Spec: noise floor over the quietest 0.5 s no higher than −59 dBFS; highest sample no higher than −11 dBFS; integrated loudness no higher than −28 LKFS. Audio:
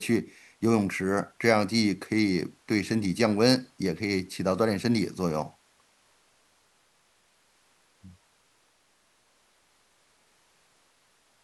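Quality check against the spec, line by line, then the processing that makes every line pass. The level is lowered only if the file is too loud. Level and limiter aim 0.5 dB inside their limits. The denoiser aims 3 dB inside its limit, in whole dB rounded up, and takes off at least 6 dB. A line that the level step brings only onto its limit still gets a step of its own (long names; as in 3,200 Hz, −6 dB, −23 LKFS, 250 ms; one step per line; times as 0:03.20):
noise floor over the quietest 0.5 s −67 dBFS: in spec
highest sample −7.0 dBFS: out of spec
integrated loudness −26.5 LKFS: out of spec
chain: level −2 dB
brickwall limiter −11.5 dBFS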